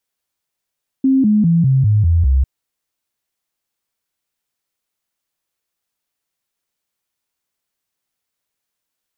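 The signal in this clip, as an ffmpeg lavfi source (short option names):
-f lavfi -i "aevalsrc='0.335*clip(min(mod(t,0.2),0.2-mod(t,0.2))/0.005,0,1)*sin(2*PI*266*pow(2,-floor(t/0.2)/3)*mod(t,0.2))':d=1.4:s=44100"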